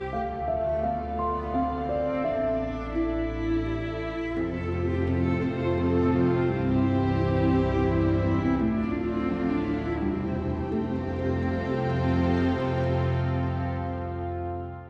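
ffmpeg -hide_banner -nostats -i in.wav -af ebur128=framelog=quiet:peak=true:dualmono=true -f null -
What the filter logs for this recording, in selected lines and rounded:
Integrated loudness:
  I:         -23.9 LUFS
  Threshold: -33.9 LUFS
Loudness range:
  LRA:         3.9 LU
  Threshold: -43.6 LUFS
  LRA low:   -25.4 LUFS
  LRA high:  -21.5 LUFS
True peak:
  Peak:      -12.4 dBFS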